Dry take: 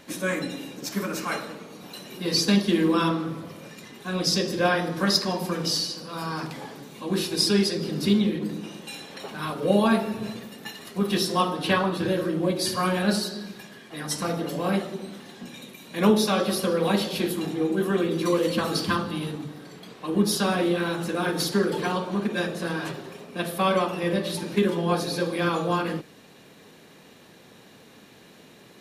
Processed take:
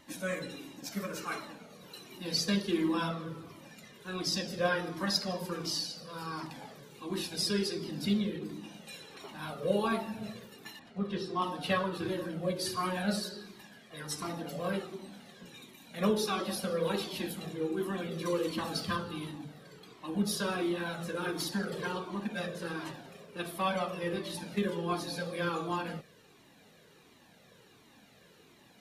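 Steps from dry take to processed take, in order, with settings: 10.79–11.42 tape spacing loss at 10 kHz 21 dB; cascading flanger falling 1.4 Hz; gain -4 dB

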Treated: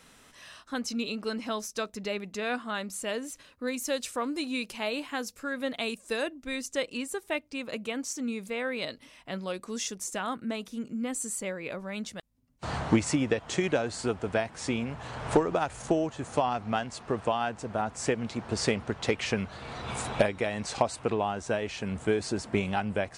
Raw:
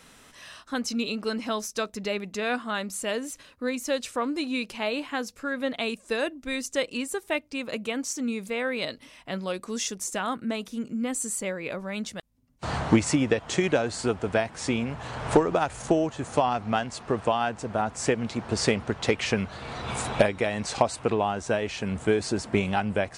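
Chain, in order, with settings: 3.67–6.23 high shelf 6700 Hz +8.5 dB; gain -3.5 dB

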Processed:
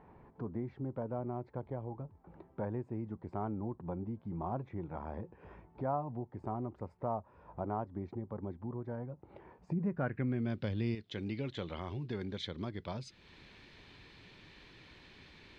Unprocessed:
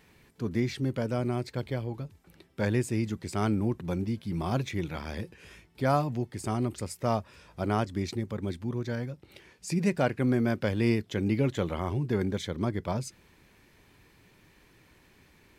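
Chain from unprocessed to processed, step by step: 9.68–10.95 low shelf 320 Hz +11 dB; compressor 2:1, threshold -48 dBFS, peak gain reduction 18.5 dB; low-pass sweep 900 Hz -> 3900 Hz, 9.76–10.55; gain +1.5 dB

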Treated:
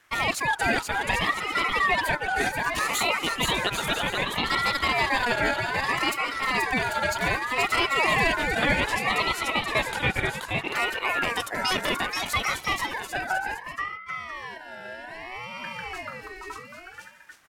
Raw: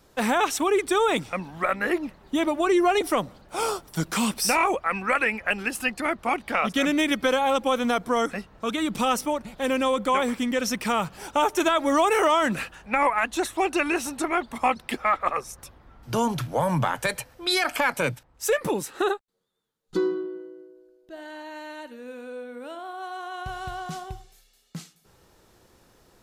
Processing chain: tempo 1.5×; bouncing-ball echo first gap 0.48 s, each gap 0.65×, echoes 5; ring modulator with a swept carrier 1400 Hz, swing 20%, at 0.64 Hz

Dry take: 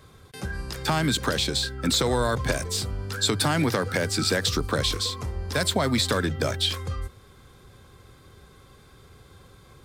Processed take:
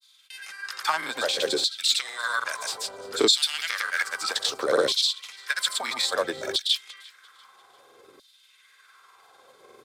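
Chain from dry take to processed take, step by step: grains, pitch spread up and down by 0 st; frequency-shifting echo 0.346 s, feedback 44%, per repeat -32 Hz, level -21 dB; LFO high-pass saw down 0.61 Hz 350–4200 Hz

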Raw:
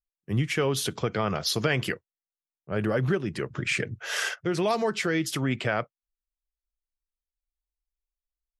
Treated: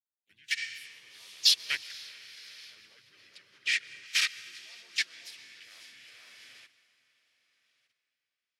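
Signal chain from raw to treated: band shelf 3300 Hz +14 dB; diffused feedback echo 0.465 s, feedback 45%, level -4 dB; level quantiser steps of 17 dB; pre-emphasis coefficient 0.97; notch 4000 Hz, Q 23; plate-style reverb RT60 3.3 s, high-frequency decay 0.8×, pre-delay 0.11 s, DRR 10 dB; spectral repair 0.6–0.99, 200–9300 Hz both; harmoniser -4 st -3 dB, +3 st -13 dB, +5 st -15 dB; upward expander 1.5:1, over -50 dBFS

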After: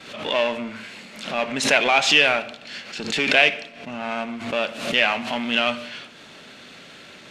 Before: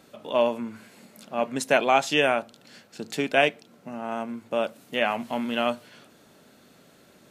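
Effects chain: power-law curve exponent 0.7; LPF 7900 Hz 12 dB/oct; bell 2700 Hz +13 dB 2 oct; upward compressor, threshold -26 dBFS; expander -27 dBFS; on a send at -15.5 dB: reverb RT60 0.75 s, pre-delay 52 ms; on the sum: backwards sustainer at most 79 dB/s; gain -6.5 dB

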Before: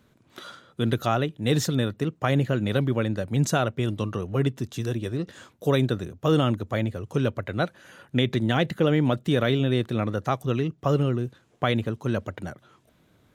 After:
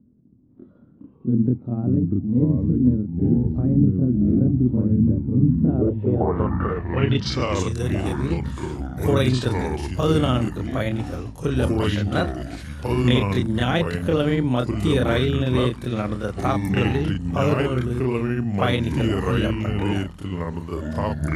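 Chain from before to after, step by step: granular stretch 1.6×, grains 0.128 s; echoes that change speed 0.259 s, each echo -4 st, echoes 3; low-pass sweep 250 Hz -> 11000 Hz, 5.64–7.87; gain +2 dB

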